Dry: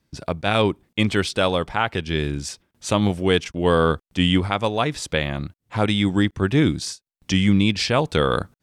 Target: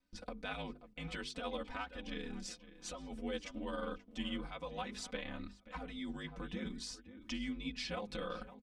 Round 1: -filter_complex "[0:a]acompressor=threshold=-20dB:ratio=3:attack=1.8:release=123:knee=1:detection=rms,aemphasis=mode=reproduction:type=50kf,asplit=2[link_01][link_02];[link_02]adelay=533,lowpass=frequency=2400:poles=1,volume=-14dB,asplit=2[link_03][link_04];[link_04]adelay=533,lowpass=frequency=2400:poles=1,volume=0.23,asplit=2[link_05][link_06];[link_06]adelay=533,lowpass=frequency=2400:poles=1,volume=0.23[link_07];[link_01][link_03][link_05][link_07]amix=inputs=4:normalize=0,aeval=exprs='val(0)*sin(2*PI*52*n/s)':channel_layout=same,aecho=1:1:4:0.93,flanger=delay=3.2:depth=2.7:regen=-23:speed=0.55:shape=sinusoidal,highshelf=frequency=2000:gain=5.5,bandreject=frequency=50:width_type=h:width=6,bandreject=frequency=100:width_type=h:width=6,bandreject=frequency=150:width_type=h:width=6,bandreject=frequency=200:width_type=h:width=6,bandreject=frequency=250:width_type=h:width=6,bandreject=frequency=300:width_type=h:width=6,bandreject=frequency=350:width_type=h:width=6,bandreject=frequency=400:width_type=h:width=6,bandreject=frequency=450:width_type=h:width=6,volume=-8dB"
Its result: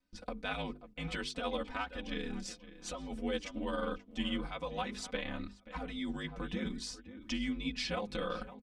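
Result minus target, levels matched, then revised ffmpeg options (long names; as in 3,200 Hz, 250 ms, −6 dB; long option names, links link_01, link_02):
downward compressor: peak gain reduction −4.5 dB
-filter_complex "[0:a]acompressor=threshold=-27dB:ratio=3:attack=1.8:release=123:knee=1:detection=rms,aemphasis=mode=reproduction:type=50kf,asplit=2[link_01][link_02];[link_02]adelay=533,lowpass=frequency=2400:poles=1,volume=-14dB,asplit=2[link_03][link_04];[link_04]adelay=533,lowpass=frequency=2400:poles=1,volume=0.23,asplit=2[link_05][link_06];[link_06]adelay=533,lowpass=frequency=2400:poles=1,volume=0.23[link_07];[link_01][link_03][link_05][link_07]amix=inputs=4:normalize=0,aeval=exprs='val(0)*sin(2*PI*52*n/s)':channel_layout=same,aecho=1:1:4:0.93,flanger=delay=3.2:depth=2.7:regen=-23:speed=0.55:shape=sinusoidal,highshelf=frequency=2000:gain=5.5,bandreject=frequency=50:width_type=h:width=6,bandreject=frequency=100:width_type=h:width=6,bandreject=frequency=150:width_type=h:width=6,bandreject=frequency=200:width_type=h:width=6,bandreject=frequency=250:width_type=h:width=6,bandreject=frequency=300:width_type=h:width=6,bandreject=frequency=350:width_type=h:width=6,bandreject=frequency=400:width_type=h:width=6,bandreject=frequency=450:width_type=h:width=6,volume=-8dB"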